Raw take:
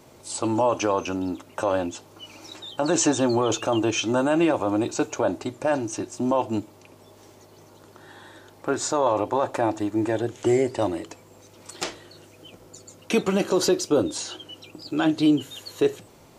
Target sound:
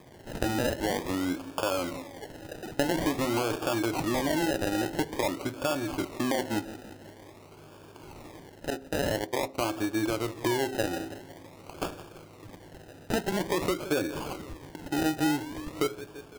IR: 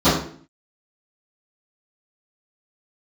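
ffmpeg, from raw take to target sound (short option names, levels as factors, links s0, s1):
-filter_complex "[0:a]highshelf=f=8900:g=-12,aecho=1:1:169|338|507|676|845:0.1|0.058|0.0336|0.0195|0.0113,acompressor=threshold=0.0447:ratio=3,asettb=1/sr,asplit=3[s0][s1][s2];[s0]atrim=end=8.704[s3];[s1]atrim=start=8.7:end=9.58,asetpts=PTS-STARTPTS,afade=t=in:d=0.004:c=qsin,afade=t=out:st=0.876:d=0.004:c=qsin,agate=range=0.126:threshold=0.0355:ratio=16:detection=peak[s4];[s2]atrim=start=9.576[s5];[s3][s4]acrossfade=d=0.004:c1=hsin:c2=qsin[s6];[s6][s5]acrossfade=d=0.004:c1=qsin:c2=hsin,acrusher=samples=31:mix=1:aa=0.000001:lfo=1:lforange=18.6:lforate=0.48,asplit=2[s7][s8];[1:a]atrim=start_sample=2205[s9];[s8][s9]afir=irnorm=-1:irlink=0,volume=0.00841[s10];[s7][s10]amix=inputs=2:normalize=0"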